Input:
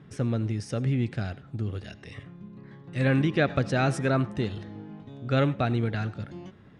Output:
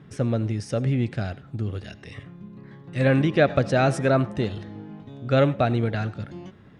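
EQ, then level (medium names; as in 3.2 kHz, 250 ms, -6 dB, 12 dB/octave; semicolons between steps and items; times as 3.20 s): dynamic bell 600 Hz, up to +6 dB, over -43 dBFS, Q 2.2; +2.5 dB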